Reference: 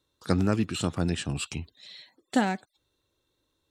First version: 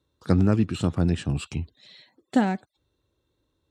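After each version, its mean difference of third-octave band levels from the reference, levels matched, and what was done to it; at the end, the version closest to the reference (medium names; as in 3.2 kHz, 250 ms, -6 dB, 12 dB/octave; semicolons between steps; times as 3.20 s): 4.0 dB: high-pass 44 Hz; tilt EQ -2 dB/octave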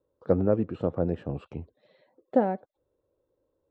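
9.0 dB: low-pass 1 kHz 12 dB/octave; peaking EQ 520 Hz +14 dB 0.7 oct; trim -3 dB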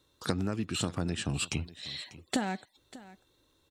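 6.0 dB: compression 12:1, threshold -34 dBFS, peak gain reduction 16.5 dB; delay 593 ms -18.5 dB; trim +6.5 dB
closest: first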